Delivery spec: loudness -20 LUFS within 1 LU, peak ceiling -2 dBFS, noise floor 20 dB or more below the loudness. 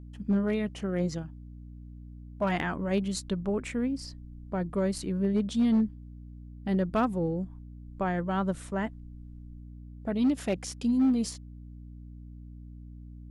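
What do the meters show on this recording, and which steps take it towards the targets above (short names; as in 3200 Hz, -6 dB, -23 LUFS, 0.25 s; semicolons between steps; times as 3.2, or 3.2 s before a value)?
clipped 0.7%; flat tops at -19.5 dBFS; hum 60 Hz; harmonics up to 300 Hz; hum level -43 dBFS; loudness -30.0 LUFS; peak -19.5 dBFS; loudness target -20.0 LUFS
-> clip repair -19.5 dBFS; notches 60/120/180/240/300 Hz; gain +10 dB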